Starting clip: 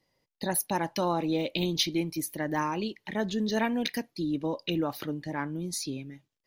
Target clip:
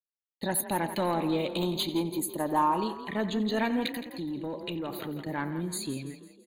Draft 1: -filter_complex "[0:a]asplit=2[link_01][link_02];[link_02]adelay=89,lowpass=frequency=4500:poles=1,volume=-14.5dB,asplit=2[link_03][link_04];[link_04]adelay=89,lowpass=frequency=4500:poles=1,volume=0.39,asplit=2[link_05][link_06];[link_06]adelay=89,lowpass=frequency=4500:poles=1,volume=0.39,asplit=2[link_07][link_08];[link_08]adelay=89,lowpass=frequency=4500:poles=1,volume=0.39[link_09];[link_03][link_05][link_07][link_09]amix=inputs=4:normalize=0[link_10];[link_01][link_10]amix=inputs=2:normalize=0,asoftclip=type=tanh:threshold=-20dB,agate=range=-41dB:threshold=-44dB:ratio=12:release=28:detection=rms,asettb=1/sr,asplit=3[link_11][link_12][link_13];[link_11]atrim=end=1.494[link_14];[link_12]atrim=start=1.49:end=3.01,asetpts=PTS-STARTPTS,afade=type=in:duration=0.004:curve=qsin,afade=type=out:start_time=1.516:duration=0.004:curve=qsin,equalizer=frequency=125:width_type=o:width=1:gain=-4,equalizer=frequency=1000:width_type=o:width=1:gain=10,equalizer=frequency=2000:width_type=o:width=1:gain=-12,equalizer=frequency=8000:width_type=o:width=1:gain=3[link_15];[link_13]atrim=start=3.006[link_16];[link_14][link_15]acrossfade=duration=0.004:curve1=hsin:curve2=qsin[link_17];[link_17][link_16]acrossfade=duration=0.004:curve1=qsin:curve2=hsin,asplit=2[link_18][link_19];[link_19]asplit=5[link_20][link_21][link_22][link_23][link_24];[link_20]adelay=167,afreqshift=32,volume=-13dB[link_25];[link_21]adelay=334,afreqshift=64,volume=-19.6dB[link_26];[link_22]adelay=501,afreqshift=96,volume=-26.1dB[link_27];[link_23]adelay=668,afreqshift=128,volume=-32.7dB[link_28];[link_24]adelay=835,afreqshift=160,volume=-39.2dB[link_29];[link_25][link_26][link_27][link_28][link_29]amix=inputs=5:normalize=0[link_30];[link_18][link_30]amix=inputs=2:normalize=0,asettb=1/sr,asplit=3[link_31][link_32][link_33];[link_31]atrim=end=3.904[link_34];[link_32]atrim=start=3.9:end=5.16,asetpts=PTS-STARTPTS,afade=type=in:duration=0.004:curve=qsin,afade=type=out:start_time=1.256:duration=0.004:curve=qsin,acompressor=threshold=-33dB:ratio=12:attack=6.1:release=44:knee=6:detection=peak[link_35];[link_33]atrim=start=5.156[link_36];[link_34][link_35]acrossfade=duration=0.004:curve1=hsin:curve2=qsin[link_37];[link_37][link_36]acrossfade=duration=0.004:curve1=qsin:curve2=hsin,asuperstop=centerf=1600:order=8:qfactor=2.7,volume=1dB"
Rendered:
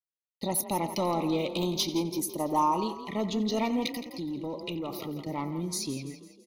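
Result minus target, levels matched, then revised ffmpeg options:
2,000 Hz band −5.5 dB
-filter_complex "[0:a]asplit=2[link_01][link_02];[link_02]adelay=89,lowpass=frequency=4500:poles=1,volume=-14.5dB,asplit=2[link_03][link_04];[link_04]adelay=89,lowpass=frequency=4500:poles=1,volume=0.39,asplit=2[link_05][link_06];[link_06]adelay=89,lowpass=frequency=4500:poles=1,volume=0.39,asplit=2[link_07][link_08];[link_08]adelay=89,lowpass=frequency=4500:poles=1,volume=0.39[link_09];[link_03][link_05][link_07][link_09]amix=inputs=4:normalize=0[link_10];[link_01][link_10]amix=inputs=2:normalize=0,asoftclip=type=tanh:threshold=-20dB,agate=range=-41dB:threshold=-44dB:ratio=12:release=28:detection=rms,asettb=1/sr,asplit=3[link_11][link_12][link_13];[link_11]atrim=end=1.494[link_14];[link_12]atrim=start=1.49:end=3.01,asetpts=PTS-STARTPTS,afade=type=in:duration=0.004:curve=qsin,afade=type=out:start_time=1.516:duration=0.004:curve=qsin,equalizer=frequency=125:width_type=o:width=1:gain=-4,equalizer=frequency=1000:width_type=o:width=1:gain=10,equalizer=frequency=2000:width_type=o:width=1:gain=-12,equalizer=frequency=8000:width_type=o:width=1:gain=3[link_15];[link_13]atrim=start=3.006[link_16];[link_14][link_15]acrossfade=duration=0.004:curve1=hsin:curve2=qsin[link_17];[link_17][link_16]acrossfade=duration=0.004:curve1=qsin:curve2=hsin,asplit=2[link_18][link_19];[link_19]asplit=5[link_20][link_21][link_22][link_23][link_24];[link_20]adelay=167,afreqshift=32,volume=-13dB[link_25];[link_21]adelay=334,afreqshift=64,volume=-19.6dB[link_26];[link_22]adelay=501,afreqshift=96,volume=-26.1dB[link_27];[link_23]adelay=668,afreqshift=128,volume=-32.7dB[link_28];[link_24]adelay=835,afreqshift=160,volume=-39.2dB[link_29];[link_25][link_26][link_27][link_28][link_29]amix=inputs=5:normalize=0[link_30];[link_18][link_30]amix=inputs=2:normalize=0,asettb=1/sr,asplit=3[link_31][link_32][link_33];[link_31]atrim=end=3.904[link_34];[link_32]atrim=start=3.9:end=5.16,asetpts=PTS-STARTPTS,afade=type=in:duration=0.004:curve=qsin,afade=type=out:start_time=1.256:duration=0.004:curve=qsin,acompressor=threshold=-33dB:ratio=12:attack=6.1:release=44:knee=6:detection=peak[link_35];[link_33]atrim=start=5.156[link_36];[link_34][link_35]acrossfade=duration=0.004:curve1=hsin:curve2=qsin[link_37];[link_37][link_36]acrossfade=duration=0.004:curve1=qsin:curve2=hsin,asuperstop=centerf=5500:order=8:qfactor=2.7,volume=1dB"

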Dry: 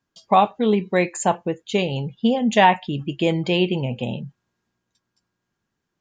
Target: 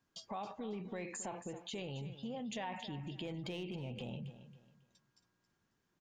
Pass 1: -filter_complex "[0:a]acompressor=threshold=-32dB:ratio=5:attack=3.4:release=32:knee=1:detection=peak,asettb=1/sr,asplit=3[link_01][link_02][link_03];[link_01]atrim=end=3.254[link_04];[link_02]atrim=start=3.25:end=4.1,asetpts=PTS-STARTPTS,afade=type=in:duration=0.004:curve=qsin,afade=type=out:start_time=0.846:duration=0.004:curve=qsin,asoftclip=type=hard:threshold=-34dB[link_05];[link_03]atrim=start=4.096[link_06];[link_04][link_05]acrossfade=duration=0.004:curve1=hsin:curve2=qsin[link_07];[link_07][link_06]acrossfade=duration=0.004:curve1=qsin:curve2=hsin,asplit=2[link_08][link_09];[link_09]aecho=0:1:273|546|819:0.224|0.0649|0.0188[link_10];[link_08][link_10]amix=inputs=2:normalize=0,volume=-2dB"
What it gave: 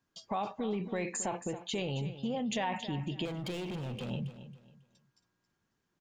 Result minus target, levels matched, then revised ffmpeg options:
downward compressor: peak gain reduction −8.5 dB
-filter_complex "[0:a]acompressor=threshold=-42.5dB:ratio=5:attack=3.4:release=32:knee=1:detection=peak,asettb=1/sr,asplit=3[link_01][link_02][link_03];[link_01]atrim=end=3.254[link_04];[link_02]atrim=start=3.25:end=4.1,asetpts=PTS-STARTPTS,afade=type=in:duration=0.004:curve=qsin,afade=type=out:start_time=0.846:duration=0.004:curve=qsin,asoftclip=type=hard:threshold=-34dB[link_05];[link_03]atrim=start=4.096[link_06];[link_04][link_05]acrossfade=duration=0.004:curve1=hsin:curve2=qsin[link_07];[link_07][link_06]acrossfade=duration=0.004:curve1=qsin:curve2=hsin,asplit=2[link_08][link_09];[link_09]aecho=0:1:273|546|819:0.224|0.0649|0.0188[link_10];[link_08][link_10]amix=inputs=2:normalize=0,volume=-2dB"

